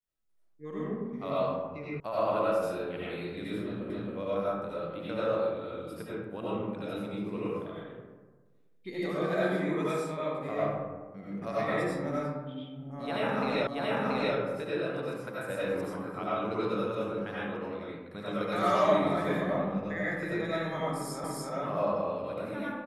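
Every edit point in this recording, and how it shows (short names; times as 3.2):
2 sound cut off
3.9 repeat of the last 0.27 s
13.67 repeat of the last 0.68 s
21.24 repeat of the last 0.29 s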